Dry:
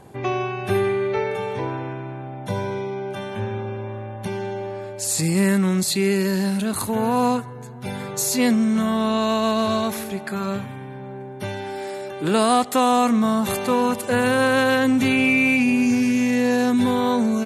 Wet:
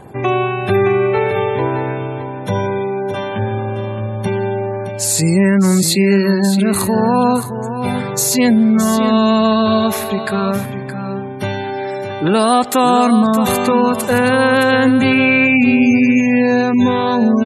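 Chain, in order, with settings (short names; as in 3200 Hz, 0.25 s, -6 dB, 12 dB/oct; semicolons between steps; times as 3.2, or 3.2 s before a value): spectral gate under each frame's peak -30 dB strong; in parallel at +1.5 dB: limiter -15.5 dBFS, peak gain reduction 8.5 dB; on the sum: echo 0.618 s -9.5 dB; gain +1.5 dB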